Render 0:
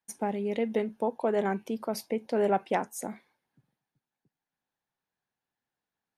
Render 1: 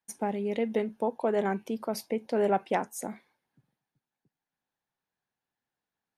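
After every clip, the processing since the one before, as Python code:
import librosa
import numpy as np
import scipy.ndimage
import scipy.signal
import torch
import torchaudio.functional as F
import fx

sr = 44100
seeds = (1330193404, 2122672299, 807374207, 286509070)

y = x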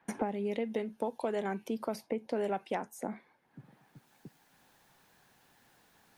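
y = fx.band_squash(x, sr, depth_pct=100)
y = y * librosa.db_to_amplitude(-6.0)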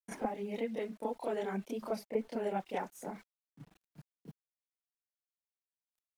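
y = np.where(np.abs(x) >= 10.0 ** (-53.5 / 20.0), x, 0.0)
y = fx.chorus_voices(y, sr, voices=6, hz=1.0, base_ms=29, depth_ms=3.7, mix_pct=70)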